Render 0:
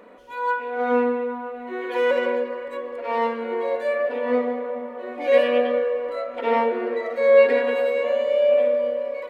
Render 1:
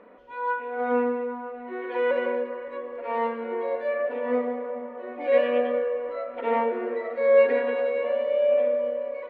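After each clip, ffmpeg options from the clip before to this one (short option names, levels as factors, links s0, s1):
-af "lowpass=2500,volume=0.668"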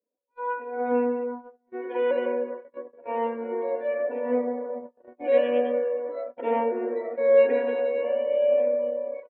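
-af "afftdn=nr=18:nf=-46,agate=range=0.0178:threshold=0.0224:ratio=16:detection=peak,equalizer=f=315:t=o:w=0.33:g=6,equalizer=f=1250:t=o:w=0.33:g=-12,equalizer=f=2000:t=o:w=0.33:g=-7"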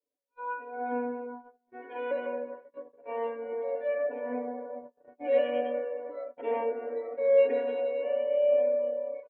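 -af "aecho=1:1:6.9:0.92,volume=0.398"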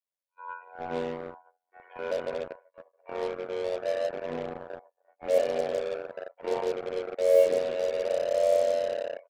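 -filter_complex "[0:a]adynamicequalizer=threshold=0.0126:dfrequency=490:dqfactor=1.8:tfrequency=490:tqfactor=1.8:attack=5:release=100:ratio=0.375:range=3:mode=boostabove:tftype=bell,tremolo=f=89:d=0.857,acrossover=split=610|1500[s0][s1][s2];[s0]acrusher=bits=5:mix=0:aa=0.5[s3];[s3][s1][s2]amix=inputs=3:normalize=0"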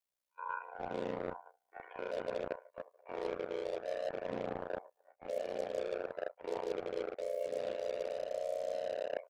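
-af "alimiter=limit=0.119:level=0:latency=1:release=225,areverse,acompressor=threshold=0.0141:ratio=10,areverse,aeval=exprs='val(0)*sin(2*PI*31*n/s)':c=same,volume=1.88"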